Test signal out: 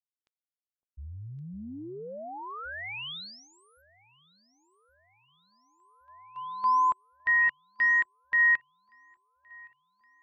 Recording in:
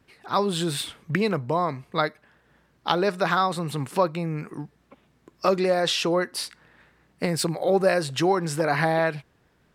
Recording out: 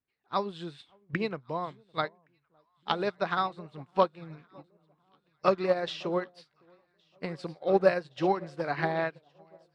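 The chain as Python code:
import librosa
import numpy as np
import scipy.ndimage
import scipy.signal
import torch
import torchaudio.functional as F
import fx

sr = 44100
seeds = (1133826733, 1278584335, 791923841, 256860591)

p1 = scipy.signal.sosfilt(scipy.signal.cheby1(2, 1.0, 3800.0, 'lowpass', fs=sr, output='sos'), x)
p2 = p1 + fx.echo_alternate(p1, sr, ms=559, hz=990.0, feedback_pct=80, wet_db=-12.0, dry=0)
p3 = fx.upward_expand(p2, sr, threshold_db=-37.0, expansion=2.5)
y = p3 * 10.0 ** (1.0 / 20.0)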